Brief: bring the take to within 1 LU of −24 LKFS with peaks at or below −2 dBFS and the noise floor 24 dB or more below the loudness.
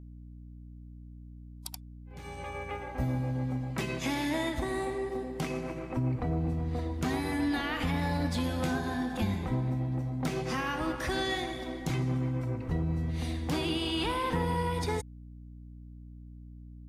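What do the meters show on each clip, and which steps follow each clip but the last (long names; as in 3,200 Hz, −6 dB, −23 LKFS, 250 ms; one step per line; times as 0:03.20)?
mains hum 60 Hz; hum harmonics up to 300 Hz; level of the hum −45 dBFS; integrated loudness −32.5 LKFS; sample peak −20.0 dBFS; target loudness −24.0 LKFS
→ hum removal 60 Hz, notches 5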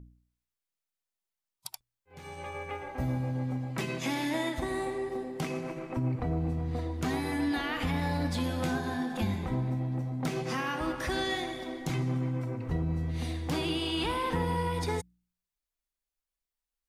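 mains hum none found; integrated loudness −32.5 LKFS; sample peak −20.0 dBFS; target loudness −24.0 LKFS
→ level +8.5 dB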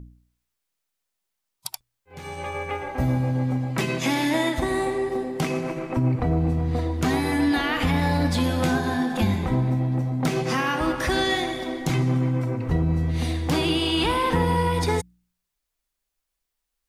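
integrated loudness −24.0 LKFS; sample peak −11.5 dBFS; background noise floor −81 dBFS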